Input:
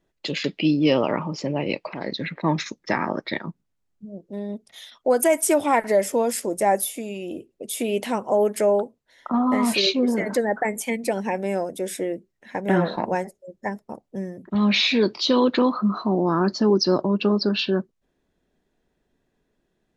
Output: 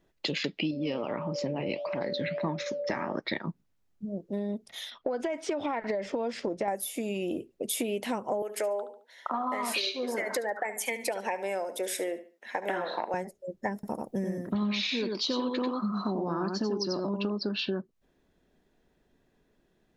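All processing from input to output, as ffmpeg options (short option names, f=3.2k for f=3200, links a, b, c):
-filter_complex "[0:a]asettb=1/sr,asplit=3[a][b][c];[a]atrim=end=0.714[d];[b]atrim=start=0.71:end=3.15,asetpts=PTS-STARTPTS,afade=t=in:d=0.004:c=qsin,afade=t=out:st=2.436:d=0.004:c=qsin,aeval=exprs='val(0)+0.0398*sin(2*PI*580*n/s)':c=same,flanger=delay=4.1:depth=8.7:regen=-79:speed=1.6:shape=triangular[e];[c]atrim=start=3.146[f];[d][e]acrossfade=d=0.004:c1=hsin:c2=qsin[g];[g][f]acrossfade=d=0.004:c1=qsin:c2=hsin,asettb=1/sr,asplit=3[h][i][j];[h]atrim=end=4.924[k];[i]atrim=start=4.92:end=6.68,asetpts=PTS-STARTPTS,afade=t=in:d=0.004:c=qsin,afade=t=out:st=1.756:d=0.004:c=qsin,lowpass=f=4.6k:w=0.5412,lowpass=f=4.6k:w=1.3066,acompressor=threshold=-21dB:ratio=5:attack=3.2:release=140:knee=1:detection=peak[l];[j]atrim=start=6.676[m];[k][l]acrossfade=d=0.004:c1=hsin:c2=qsin[n];[n][m]acrossfade=d=0.004:c1=qsin:c2=hsin,asettb=1/sr,asplit=3[o][p][q];[o]atrim=end=8.424[r];[p]atrim=start=8.42:end=13.14,asetpts=PTS-STARTPTS,afade=t=in:d=0.004:c=qsin,afade=t=out:st=4.716:d=0.004:c=qsin,highpass=540,aecho=1:1:72|144|216:0.2|0.0559|0.0156,atrim=end_sample=208152[s];[q]atrim=start=13.136[t];[r][s]acrossfade=d=0.004:c1=hsin:c2=qsin[u];[u][t]acrossfade=d=0.004:c1=qsin:c2=hsin,asettb=1/sr,asplit=3[v][w][x];[v]atrim=end=13.744[y];[w]atrim=start=13.74:end=17.3,asetpts=PTS-STARTPTS,afade=t=in:d=0.004:c=qsin,afade=t=out:st=3.556:d=0.004:c=qsin,highshelf=f=7.5k:g=11,aecho=1:1:92:0.631,atrim=end_sample=156996[z];[x]atrim=start=17.296[aa];[y][z]acrossfade=d=0.004:c1=hsin:c2=qsin[ab];[ab][aa]acrossfade=d=0.004:c1=qsin:c2=hsin,equalizer=f=8.3k:t=o:w=0.68:g=-3,acompressor=threshold=-30dB:ratio=12,volume=2.5dB"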